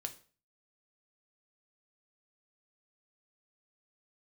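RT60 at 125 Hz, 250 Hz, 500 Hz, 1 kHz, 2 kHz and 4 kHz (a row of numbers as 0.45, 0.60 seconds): 0.55, 0.40, 0.40, 0.40, 0.40, 0.35 seconds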